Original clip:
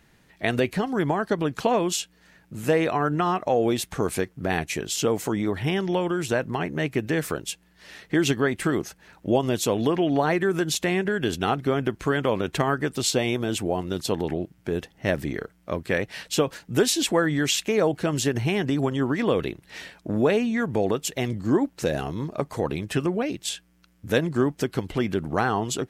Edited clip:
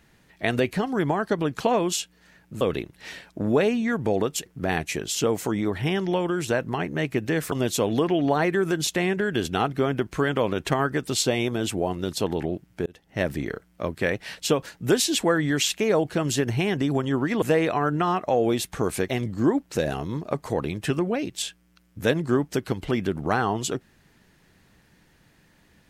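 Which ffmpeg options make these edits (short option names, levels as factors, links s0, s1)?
-filter_complex "[0:a]asplit=7[s0][s1][s2][s3][s4][s5][s6];[s0]atrim=end=2.612[s7];[s1]atrim=start=19.298:end=21.152[s8];[s2]atrim=start=4.268:end=7.332[s9];[s3]atrim=start=9.398:end=14.74,asetpts=PTS-STARTPTS,afade=t=out:st=5.338:d=0.004:c=hsin[s10];[s4]atrim=start=14.74:end=19.302,asetpts=PTS-STARTPTS,afade=t=in:d=0.54:c=qsin[s11];[s5]atrim=start=2.608:end=4.272[s12];[s6]atrim=start=21.148[s13];[s7][s8]acrossfade=d=0.004:c1=hsin:c2=hsin[s14];[s14][s9]acrossfade=d=0.004:c1=hsin:c2=hsin[s15];[s10][s11]concat=n=2:v=0:a=1[s16];[s15][s16]acrossfade=d=0.004:c1=hsin:c2=hsin[s17];[s17][s12]acrossfade=d=0.004:c1=hsin:c2=hsin[s18];[s18][s13]acrossfade=d=0.004:c1=hsin:c2=hsin"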